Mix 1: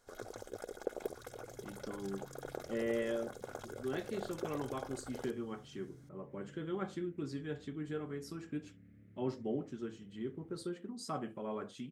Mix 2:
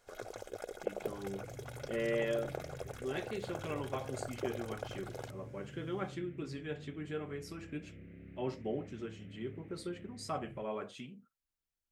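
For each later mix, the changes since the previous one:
speech: entry -0.80 s; second sound +9.5 dB; master: add fifteen-band graphic EQ 250 Hz -4 dB, 630 Hz +4 dB, 2.5 kHz +8 dB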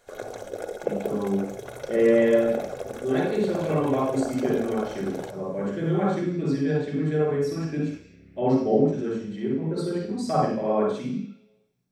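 first sound +6.0 dB; reverb: on

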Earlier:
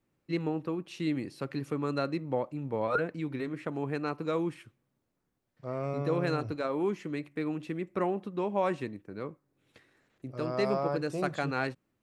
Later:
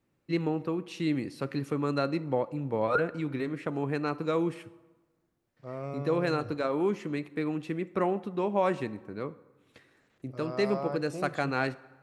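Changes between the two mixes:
second voice -5.5 dB; reverb: on, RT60 1.3 s

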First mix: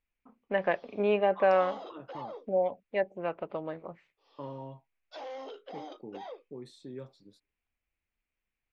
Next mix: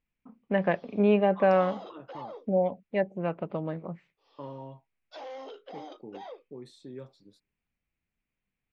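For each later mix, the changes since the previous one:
first voice: add peaking EQ 170 Hz +12.5 dB 1.4 oct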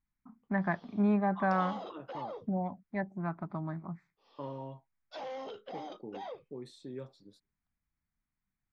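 first voice: add static phaser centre 1.2 kHz, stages 4; background: remove Chebyshev high-pass 270 Hz, order 5

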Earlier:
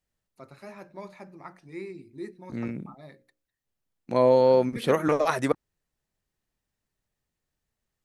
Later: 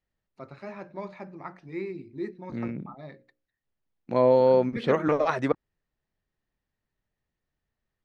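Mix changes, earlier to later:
first voice +4.5 dB; master: add distance through air 160 m

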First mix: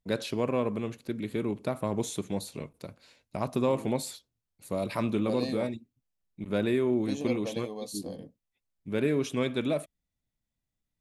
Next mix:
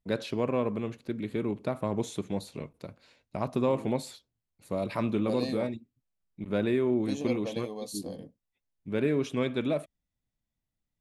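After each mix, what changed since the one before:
first voice: add treble shelf 6.1 kHz -10.5 dB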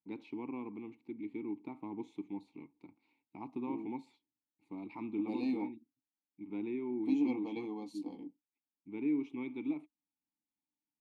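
second voice +10.5 dB; master: add vowel filter u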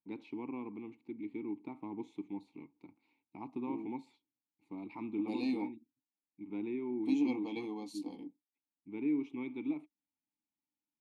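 second voice: add treble shelf 2.8 kHz +8.5 dB

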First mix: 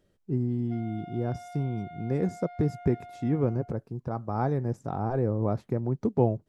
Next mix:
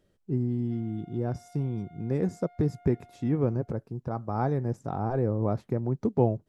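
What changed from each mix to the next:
background -10.5 dB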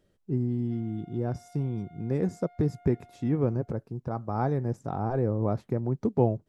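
no change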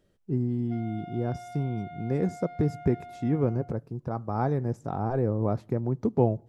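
background +11.5 dB; reverb: on, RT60 0.90 s

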